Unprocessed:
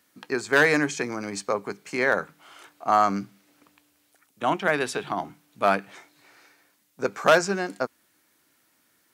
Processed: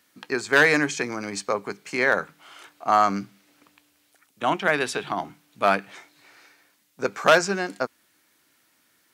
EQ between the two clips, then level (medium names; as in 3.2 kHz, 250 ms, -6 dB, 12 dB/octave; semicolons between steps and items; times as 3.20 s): peaking EQ 3.1 kHz +3.5 dB 2.4 oct; 0.0 dB